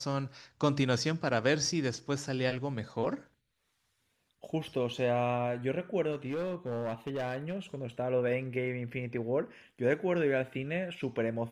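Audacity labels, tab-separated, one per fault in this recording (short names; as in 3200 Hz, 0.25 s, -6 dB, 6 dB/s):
6.110000	7.750000	clipped -30.5 dBFS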